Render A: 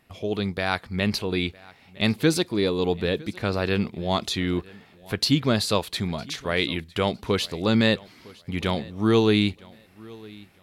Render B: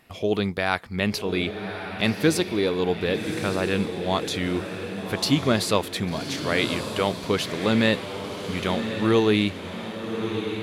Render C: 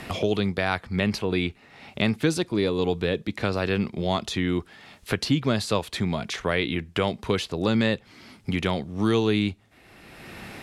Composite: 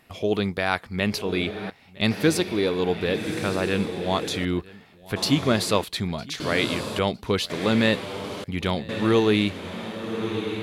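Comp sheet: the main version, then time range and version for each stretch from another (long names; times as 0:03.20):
B
0:01.70–0:02.11: punch in from A
0:04.45–0:05.16: punch in from A
0:05.84–0:06.40: punch in from A
0:06.99–0:07.50: punch in from A
0:08.44–0:08.89: punch in from A
not used: C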